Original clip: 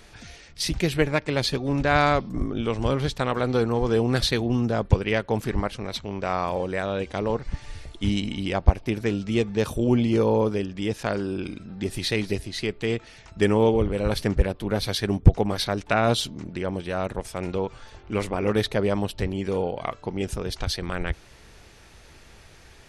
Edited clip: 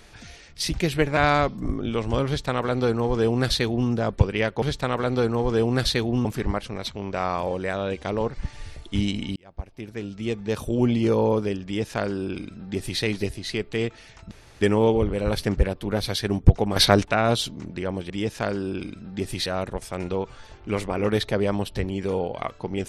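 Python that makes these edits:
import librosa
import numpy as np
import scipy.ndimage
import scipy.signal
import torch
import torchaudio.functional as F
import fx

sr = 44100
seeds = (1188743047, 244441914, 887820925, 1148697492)

y = fx.edit(x, sr, fx.cut(start_s=1.17, length_s=0.72),
    fx.duplicate(start_s=2.99, length_s=1.63, to_s=5.34),
    fx.fade_in_span(start_s=8.45, length_s=1.57),
    fx.duplicate(start_s=10.74, length_s=1.36, to_s=16.89),
    fx.insert_room_tone(at_s=13.4, length_s=0.3),
    fx.clip_gain(start_s=15.55, length_s=0.29, db=9.5), tone=tone)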